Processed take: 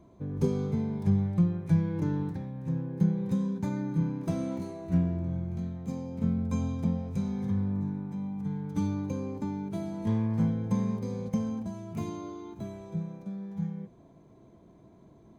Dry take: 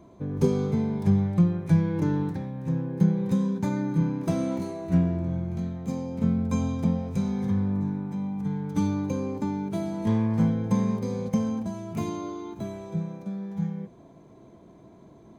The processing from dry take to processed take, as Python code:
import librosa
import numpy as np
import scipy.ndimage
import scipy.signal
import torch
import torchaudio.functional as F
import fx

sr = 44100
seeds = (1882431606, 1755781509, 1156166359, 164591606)

y = fx.low_shelf(x, sr, hz=150.0, db=6.0)
y = y * librosa.db_to_amplitude(-6.5)